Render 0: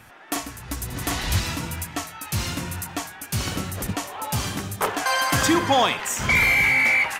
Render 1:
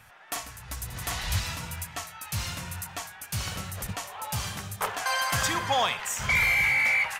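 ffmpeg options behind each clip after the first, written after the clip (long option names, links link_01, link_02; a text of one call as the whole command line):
ffmpeg -i in.wav -af "equalizer=frequency=300:width=1.6:gain=-15,volume=-4.5dB" out.wav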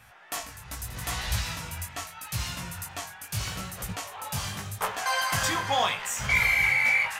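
ffmpeg -i in.wav -af "flanger=delay=16:depth=5.7:speed=0.8,volume=3dB" out.wav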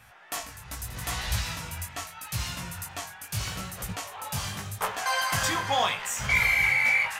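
ffmpeg -i in.wav -af anull out.wav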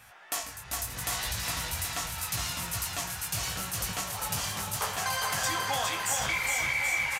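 ffmpeg -i in.wav -af "acompressor=threshold=-29dB:ratio=6,bass=frequency=250:gain=-4,treble=frequency=4000:gain=4,aecho=1:1:410|779|1111|1410|1679:0.631|0.398|0.251|0.158|0.1" out.wav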